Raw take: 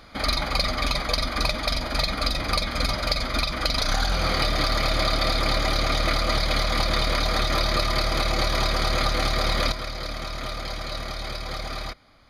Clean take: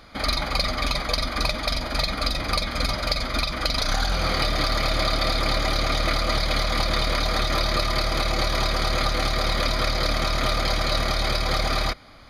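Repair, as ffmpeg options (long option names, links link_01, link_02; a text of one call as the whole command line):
ffmpeg -i in.wav -af "asetnsamples=nb_out_samples=441:pad=0,asendcmd='9.72 volume volume 8.5dB',volume=0dB" out.wav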